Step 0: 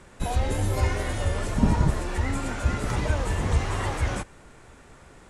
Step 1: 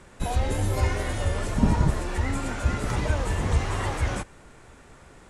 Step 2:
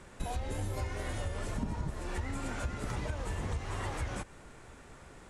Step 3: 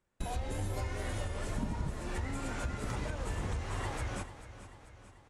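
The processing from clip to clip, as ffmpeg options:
-af anull
-af "acompressor=threshold=0.0316:ratio=6,volume=0.75"
-af "bandreject=f=79.99:t=h:w=4,bandreject=f=159.98:t=h:w=4,bandreject=f=239.97:t=h:w=4,bandreject=f=319.96:t=h:w=4,bandreject=f=399.95:t=h:w=4,bandreject=f=479.94:t=h:w=4,bandreject=f=559.93:t=h:w=4,bandreject=f=639.92:t=h:w=4,bandreject=f=719.91:t=h:w=4,bandreject=f=799.9:t=h:w=4,bandreject=f=879.89:t=h:w=4,bandreject=f=959.88:t=h:w=4,bandreject=f=1039.87:t=h:w=4,bandreject=f=1119.86:t=h:w=4,bandreject=f=1199.85:t=h:w=4,bandreject=f=1279.84:t=h:w=4,bandreject=f=1359.83:t=h:w=4,bandreject=f=1439.82:t=h:w=4,bandreject=f=1519.81:t=h:w=4,bandreject=f=1599.8:t=h:w=4,bandreject=f=1679.79:t=h:w=4,bandreject=f=1759.78:t=h:w=4,bandreject=f=1839.77:t=h:w=4,bandreject=f=1919.76:t=h:w=4,bandreject=f=1999.75:t=h:w=4,bandreject=f=2079.74:t=h:w=4,bandreject=f=2159.73:t=h:w=4,bandreject=f=2239.72:t=h:w=4,agate=range=0.0398:threshold=0.00891:ratio=16:detection=peak,aecho=1:1:440|880|1320|1760|2200|2640:0.211|0.118|0.0663|0.0371|0.0208|0.0116"

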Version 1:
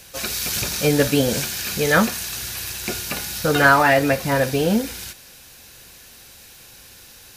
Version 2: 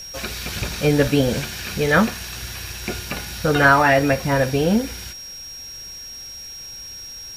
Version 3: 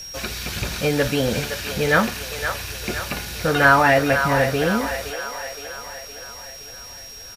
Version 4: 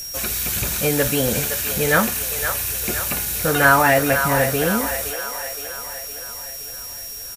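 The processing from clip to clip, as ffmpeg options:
-filter_complex "[0:a]lowshelf=f=74:g=11,aeval=exprs='val(0)+0.0251*sin(2*PI*5600*n/s)':c=same,acrossover=split=4000[s0][s1];[s1]acompressor=threshold=0.0178:ratio=4:attack=1:release=60[s2];[s0][s2]amix=inputs=2:normalize=0"
-filter_complex "[0:a]acrossover=split=460[s0][s1];[s0]alimiter=limit=0.126:level=0:latency=1[s2];[s1]aecho=1:1:516|1032|1548|2064|2580|3096|3612:0.422|0.232|0.128|0.0702|0.0386|0.0212|0.0117[s3];[s2][s3]amix=inputs=2:normalize=0"
-af "aexciter=amount=5.1:drive=4.1:freq=6800"

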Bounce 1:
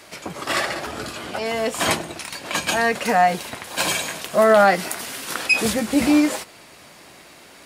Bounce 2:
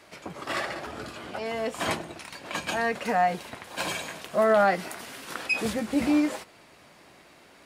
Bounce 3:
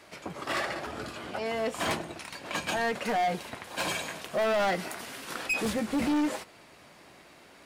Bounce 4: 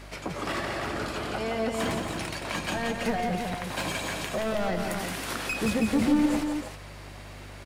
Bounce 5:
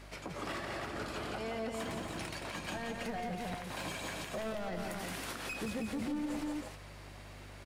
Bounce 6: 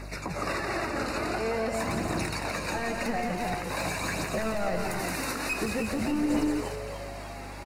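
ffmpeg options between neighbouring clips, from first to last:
-af "highshelf=f=4100:g=-8,volume=0.473"
-af "asoftclip=type=hard:threshold=0.0631"
-filter_complex "[0:a]acrossover=split=310[s0][s1];[s1]acompressor=threshold=0.0158:ratio=6[s2];[s0][s2]amix=inputs=2:normalize=0,aeval=exprs='val(0)+0.00316*(sin(2*PI*50*n/s)+sin(2*PI*2*50*n/s)/2+sin(2*PI*3*50*n/s)/3+sin(2*PI*4*50*n/s)/4+sin(2*PI*5*50*n/s)/5)':c=same,asplit=2[s3][s4];[s4]aecho=0:1:172|322:0.531|0.473[s5];[s3][s5]amix=inputs=2:normalize=0,volume=1.88"
-af "alimiter=limit=0.075:level=0:latency=1:release=104,volume=0.447"
-filter_complex "[0:a]aphaser=in_gain=1:out_gain=1:delay=3.9:decay=0.37:speed=0.47:type=triangular,asuperstop=centerf=3200:order=8:qfactor=3.7,asplit=2[s0][s1];[s1]asplit=8[s2][s3][s4][s5][s6][s7][s8][s9];[s2]adelay=289,afreqshift=130,volume=0.237[s10];[s3]adelay=578,afreqshift=260,volume=0.151[s11];[s4]adelay=867,afreqshift=390,volume=0.0966[s12];[s5]adelay=1156,afreqshift=520,volume=0.0624[s13];[s6]adelay=1445,afreqshift=650,volume=0.0398[s14];[s7]adelay=1734,afreqshift=780,volume=0.0254[s15];[s8]adelay=2023,afreqshift=910,volume=0.0162[s16];[s9]adelay=2312,afreqshift=1040,volume=0.0105[s17];[s10][s11][s12][s13][s14][s15][s16][s17]amix=inputs=8:normalize=0[s18];[s0][s18]amix=inputs=2:normalize=0,volume=2.66"

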